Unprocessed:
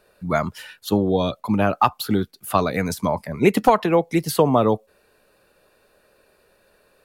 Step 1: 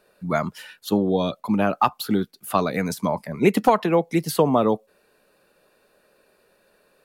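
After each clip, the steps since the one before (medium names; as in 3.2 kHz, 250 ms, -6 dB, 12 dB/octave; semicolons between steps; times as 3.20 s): resonant low shelf 130 Hz -6 dB, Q 1.5; trim -2 dB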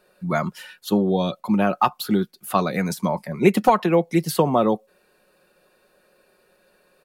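comb 5.5 ms, depth 37%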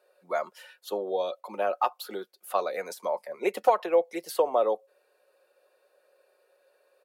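ladder high-pass 440 Hz, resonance 50%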